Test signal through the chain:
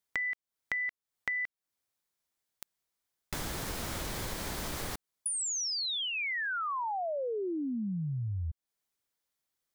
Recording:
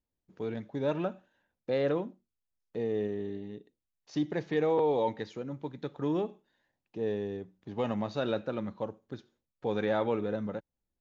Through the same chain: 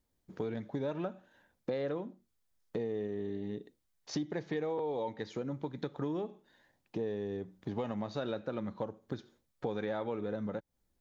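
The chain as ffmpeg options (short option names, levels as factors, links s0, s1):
-af "equalizer=f=2700:w=6:g=-4.5,acompressor=threshold=0.00708:ratio=5,volume=2.66"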